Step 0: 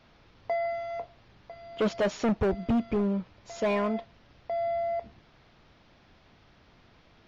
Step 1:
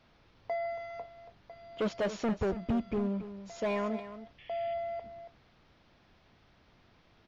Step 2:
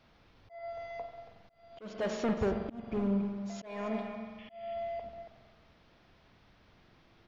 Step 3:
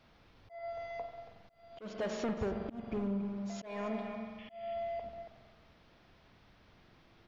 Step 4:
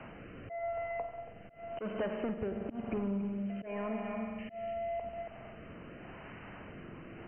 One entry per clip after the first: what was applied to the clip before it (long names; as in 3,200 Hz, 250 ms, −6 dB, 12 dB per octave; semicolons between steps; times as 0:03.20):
sound drawn into the spectrogram noise, 0:04.38–0:04.74, 1,700–3,500 Hz −51 dBFS; single-tap delay 279 ms −12.5 dB; level −5 dB
spring reverb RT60 1.9 s, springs 45 ms, chirp 35 ms, DRR 6 dB; volume swells 335 ms
downward compressor 2.5 to 1, threshold −34 dBFS, peak gain reduction 5.5 dB
rotating-speaker cabinet horn 0.9 Hz; linear-phase brick-wall low-pass 3,100 Hz; multiband upward and downward compressor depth 70%; level +4.5 dB